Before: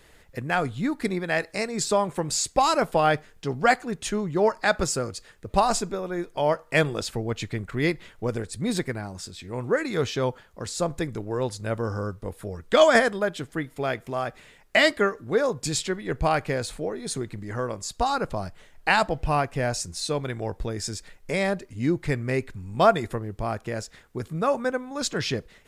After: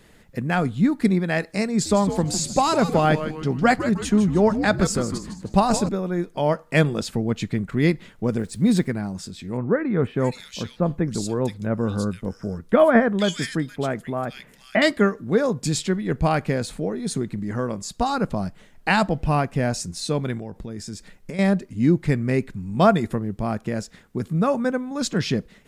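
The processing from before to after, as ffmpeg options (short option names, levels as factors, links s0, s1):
-filter_complex "[0:a]asettb=1/sr,asplit=3[s0][s1][s2];[s0]atrim=end=1.704[s3];[s1]atrim=start=1.7:end=5.89,asetpts=PTS-STARTPTS,afade=t=in:d=0.004:c=qsin,afade=t=out:st=4.186:d=0.004:c=qsin,asplit=6[s4][s5][s6][s7][s8][s9];[s5]adelay=155,afreqshift=-150,volume=0.316[s10];[s6]adelay=310,afreqshift=-300,volume=0.143[s11];[s7]adelay=465,afreqshift=-450,volume=0.0638[s12];[s8]adelay=620,afreqshift=-600,volume=0.0288[s13];[s9]adelay=775,afreqshift=-750,volume=0.013[s14];[s4][s10][s11][s12][s13][s14]amix=inputs=6:normalize=0,atrim=end_sample=184779[s15];[s2]atrim=start=5.886[s16];[s3][s15]acrossfade=d=0.004:c1=hsin:c2=qsin[s17];[s17][s16]acrossfade=d=0.004:c1=qsin:c2=hsin,asettb=1/sr,asplit=3[s18][s19][s20];[s18]atrim=end=8.394[s21];[s19]atrim=start=8.39:end=8.86,asetpts=PTS-STARTPTS,afade=t=in:d=0.004:c=qsin,afade=t=out:st=0.466:d=0.004:c=qsin,acrusher=bits=8:mix=0:aa=0.5[s22];[s20]atrim=start=8.856[s23];[s21][s22]acrossfade=d=0.004:c1=hsin:c2=qsin[s24];[s24][s23]acrossfade=d=0.004:c1=qsin:c2=hsin,asettb=1/sr,asplit=3[s25][s26][s27];[s25]atrim=end=9.574[s28];[s26]atrim=start=9.57:end=14.82,asetpts=PTS-STARTPTS,afade=t=in:d=0.004:c=qsin,afade=t=out:st=5.246:d=0.004:c=qsin,acrossover=split=2300[s29][s30];[s30]adelay=470[s31];[s29][s31]amix=inputs=2:normalize=0,atrim=end_sample=231525[s32];[s27]atrim=start=14.816[s33];[s28][s32]acrossfade=d=0.004:c1=hsin:c2=qsin[s34];[s34][s33]acrossfade=d=0.004:c1=qsin:c2=hsin,asettb=1/sr,asplit=3[s35][s36][s37];[s35]atrim=end=20.374[s38];[s36]atrim=start=20.37:end=21.39,asetpts=PTS-STARTPTS,afade=t=in:d=0.004:c=qsin,afade=t=out:st=1.016:d=0.004:c=qsin,acompressor=threshold=0.02:ratio=5:attack=3.2:release=140:knee=1:detection=peak[s39];[s37]atrim=start=21.386[s40];[s38][s39]acrossfade=d=0.004:c1=hsin:c2=qsin[s41];[s41][s40]acrossfade=d=0.004:c1=qsin:c2=hsin,equalizer=f=200:w=1.3:g=11.5"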